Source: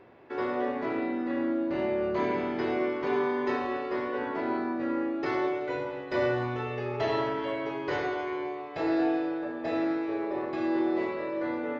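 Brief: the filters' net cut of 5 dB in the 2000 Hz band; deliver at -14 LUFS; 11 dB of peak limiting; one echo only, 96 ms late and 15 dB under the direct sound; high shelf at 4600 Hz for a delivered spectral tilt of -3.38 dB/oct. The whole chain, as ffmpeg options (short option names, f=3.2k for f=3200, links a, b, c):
-af "equalizer=f=2k:t=o:g=-5.5,highshelf=f=4.6k:g=-6,alimiter=level_in=4dB:limit=-24dB:level=0:latency=1,volume=-4dB,aecho=1:1:96:0.178,volume=22.5dB"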